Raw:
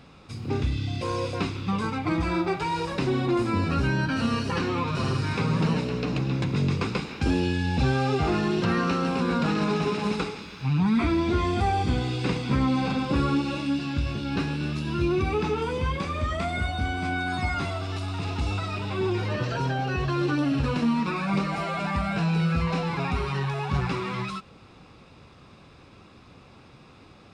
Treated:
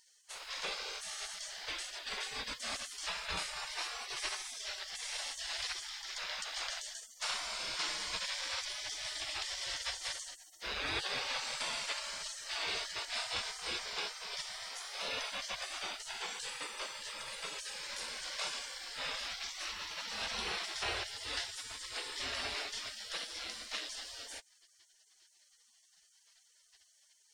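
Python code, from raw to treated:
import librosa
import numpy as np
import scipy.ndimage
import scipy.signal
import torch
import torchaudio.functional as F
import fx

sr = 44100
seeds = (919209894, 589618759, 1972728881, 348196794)

y = fx.dynamic_eq(x, sr, hz=150.0, q=2.6, threshold_db=-39.0, ratio=4.0, max_db=-4)
y = fx.spec_gate(y, sr, threshold_db=-30, keep='weak')
y = y * 10.0 ** (6.5 / 20.0)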